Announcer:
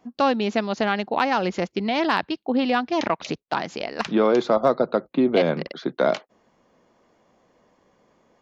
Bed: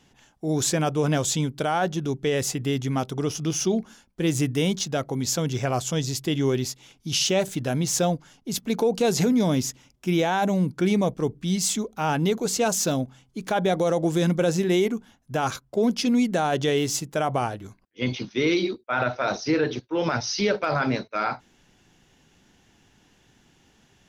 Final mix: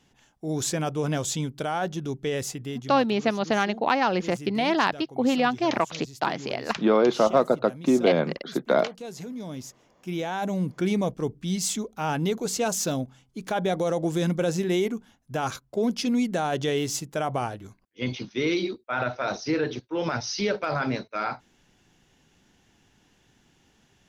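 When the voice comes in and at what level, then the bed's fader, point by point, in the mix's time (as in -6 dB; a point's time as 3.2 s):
2.70 s, -1.0 dB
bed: 2.35 s -4 dB
3.3 s -16.5 dB
9.24 s -16.5 dB
10.73 s -3 dB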